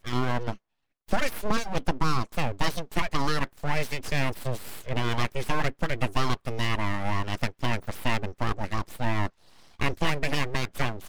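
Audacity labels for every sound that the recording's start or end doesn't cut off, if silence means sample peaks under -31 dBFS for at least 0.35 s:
1.110000	9.270000	sound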